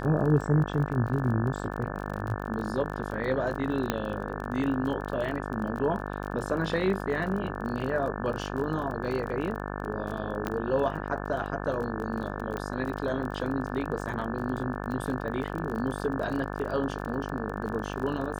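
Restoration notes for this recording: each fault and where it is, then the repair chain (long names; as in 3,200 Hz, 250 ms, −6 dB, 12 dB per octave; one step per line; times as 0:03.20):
mains buzz 50 Hz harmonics 35 −35 dBFS
surface crackle 28 per second −34 dBFS
0:03.90: click −11 dBFS
0:10.47: click −15 dBFS
0:12.57: click −21 dBFS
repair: click removal
hum removal 50 Hz, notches 35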